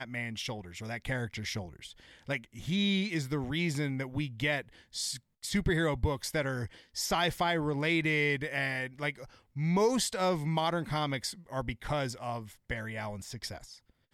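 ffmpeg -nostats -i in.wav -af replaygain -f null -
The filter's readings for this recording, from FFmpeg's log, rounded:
track_gain = +12.0 dB
track_peak = 0.108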